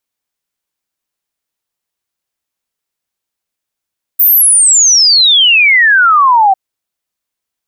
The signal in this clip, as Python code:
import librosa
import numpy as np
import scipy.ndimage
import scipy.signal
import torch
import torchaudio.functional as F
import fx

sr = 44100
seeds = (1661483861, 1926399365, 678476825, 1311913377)

y = fx.ess(sr, length_s=2.35, from_hz=15000.0, to_hz=750.0, level_db=-4.0)